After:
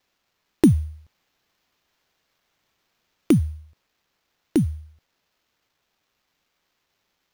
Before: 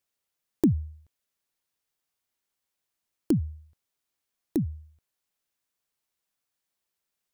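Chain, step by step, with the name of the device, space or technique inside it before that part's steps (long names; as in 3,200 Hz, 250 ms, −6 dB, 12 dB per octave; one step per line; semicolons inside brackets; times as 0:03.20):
0:00.92–0:03.41: high-shelf EQ 11,000 Hz +4.5 dB
early companding sampler (sample-rate reduction 9,500 Hz, jitter 0%; log-companded quantiser 8 bits)
level +7 dB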